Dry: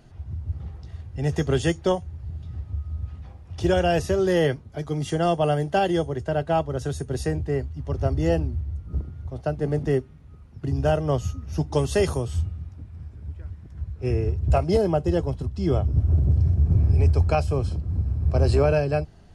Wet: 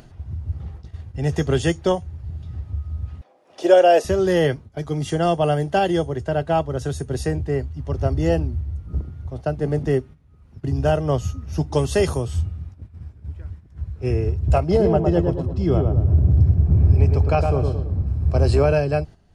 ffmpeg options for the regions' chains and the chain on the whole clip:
-filter_complex "[0:a]asettb=1/sr,asplit=3[a][b][c];[a]atrim=end=3.214[d];[b]atrim=start=3.21:end=4.05,asetpts=PTS-STARTPTS,afade=t=in:d=0.004:c=qsin,afade=t=out:st=0.836:d=0.004:c=qsin,highpass=f=290:w=0.5412,highpass=f=290:w=1.3066,equalizer=f=590:w=2.1:g=9.5[e];[c]atrim=start=4.046[f];[d][e]acrossfade=d=0.004:c1=hsin:c2=qsin[g];[g][f]acrossfade=d=0.004:c1=qsin:c2=hsin,asettb=1/sr,asplit=3[h][i][j];[h]atrim=end=14.604[k];[i]atrim=start=14.6:end=18.07,asetpts=PTS-STARTPTS,afade=t=in:d=0.004:c=qsin,afade=t=out:st=3.466:d=0.004:c=qsin,lowpass=f=3.6k:p=1,asplit=2[l][m];[m]adelay=110,lowpass=f=1.4k:p=1,volume=-3.5dB,asplit=2[n][o];[o]adelay=110,lowpass=f=1.4k:p=1,volume=0.46,asplit=2[p][q];[q]adelay=110,lowpass=f=1.4k:p=1,volume=0.46,asplit=2[r][s];[s]adelay=110,lowpass=f=1.4k:p=1,volume=0.46,asplit=2[t][u];[u]adelay=110,lowpass=f=1.4k:p=1,volume=0.46,asplit=2[v][w];[w]adelay=110,lowpass=f=1.4k:p=1,volume=0.46[x];[l][n][p][r][t][v][x]amix=inputs=7:normalize=0,atrim=end_sample=153027[y];[j]atrim=start=18.066[z];[k][y]acrossfade=d=0.004:c1=hsin:c2=qsin[aa];[aa][z]acrossfade=d=0.004:c1=qsin:c2=hsin,agate=range=-10dB:threshold=-38dB:ratio=16:detection=peak,acompressor=mode=upward:threshold=-38dB:ratio=2.5,volume=2.5dB"

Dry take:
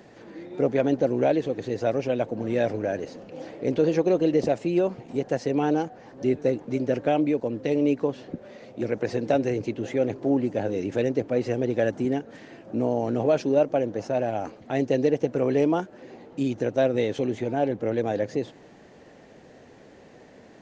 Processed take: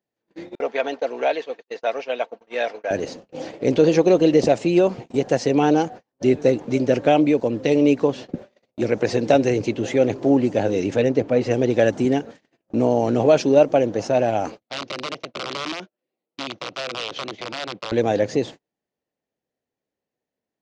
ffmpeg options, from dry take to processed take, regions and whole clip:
-filter_complex "[0:a]asettb=1/sr,asplit=3[a][b][c];[a]atrim=end=0.554[d];[b]atrim=start=0.55:end=2.91,asetpts=PTS-STARTPTS,afade=t=in:d=0.004:c=qsin,afade=t=out:st=2.356:d=0.004:c=qsin,agate=range=-33dB:threshold=-27dB:ratio=3:release=100:detection=peak,highpass=740,lowpass=4.1k,aecho=1:1:4.4:0.3,atrim=end_sample=104076[e];[c]atrim=start=2.906[f];[d][e]acrossfade=d=0.004:c1=hsin:c2=qsin[g];[g][f]acrossfade=d=0.004:c1=qsin:c2=hsin,asettb=1/sr,asplit=3[h][i][j];[h]atrim=end=10.944[k];[i]atrim=start=10.94:end=11.51,asetpts=PTS-STARTPTS,afade=t=in:d=0.004:c=qsin,afade=t=out:st=0.566:d=0.004:c=qsin,highshelf=f=4.7k:g=-9.5,bandreject=f=360:w=12[l];[j]atrim=start=11.506[m];[k][l]acrossfade=d=0.004:c1=hsin:c2=qsin[n];[n][m]acrossfade=d=0.004:c1=qsin:c2=hsin,asettb=1/sr,asplit=3[o][p][q];[o]atrim=end=14.634[r];[p]atrim=start=14.63:end=17.92,asetpts=PTS-STARTPTS,afade=t=in:d=0.004:c=qsin,afade=t=out:st=3.286:d=0.004:c=qsin,acompressor=threshold=-31dB:ratio=4:attack=3.2:release=140:knee=1:detection=peak,aeval=exprs='(mod(22.4*val(0)+1,2)-1)/22.4':c=same,highpass=190,equalizer=f=250:t=q:w=4:g=-7,equalizer=f=430:t=q:w=4:g=-5,equalizer=f=860:t=q:w=4:g=-7,equalizer=f=1.7k:t=q:w=4:g=-6,lowpass=f=4.9k:w=0.5412,lowpass=f=4.9k:w=1.3066[s];[q]atrim=start=17.916[t];[r][s]acrossfade=d=0.004:c1=hsin:c2=qsin[u];[u][t]acrossfade=d=0.004:c1=qsin:c2=hsin,tiltshelf=f=1.1k:g=-3,agate=range=-43dB:threshold=-41dB:ratio=16:detection=peak,equalizer=f=1.7k:t=o:w=0.9:g=-3.5,volume=8.5dB"

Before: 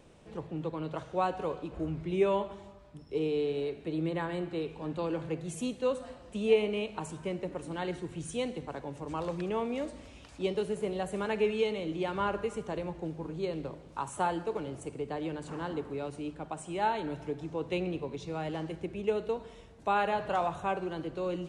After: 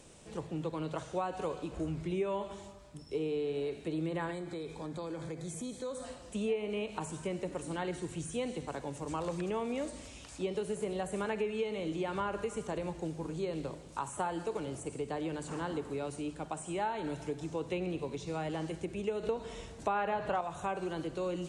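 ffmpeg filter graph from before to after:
-filter_complex "[0:a]asettb=1/sr,asplit=3[a][b][c];[a]atrim=end=4.314[d];[b]atrim=start=4.31:end=6.04,asetpts=PTS-STARTPTS,afade=t=in:d=0.004:c=qsin,afade=t=out:st=1.726:d=0.004:c=qsin,acompressor=threshold=-37dB:ratio=4:attack=3.2:release=140:knee=1:detection=peak,asuperstop=centerf=2800:order=4:qfactor=5[e];[c]atrim=start=6.036[f];[d][e]acrossfade=d=0.004:c1=hsin:c2=qsin[g];[g][f]acrossfade=d=0.004:c1=qsin:c2=hsin,asettb=1/sr,asplit=3[h][i][j];[h]atrim=end=19.234[k];[i]atrim=start=19.23:end=20.41,asetpts=PTS-STARTPTS,afade=t=in:d=0.004:c=qsin,afade=t=out:st=1.176:d=0.004:c=qsin,highshelf=f=9.1k:g=-10.5,acontrast=71[l];[j]atrim=start=20.406[m];[k][l]acrossfade=d=0.004:c1=hsin:c2=qsin[n];[n][m]acrossfade=d=0.004:c1=qsin:c2=hsin,acrossover=split=2600[o][p];[p]acompressor=threshold=-57dB:ratio=4:attack=1:release=60[q];[o][q]amix=inputs=2:normalize=0,equalizer=f=8.2k:w=0.64:g=14,acompressor=threshold=-31dB:ratio=4"

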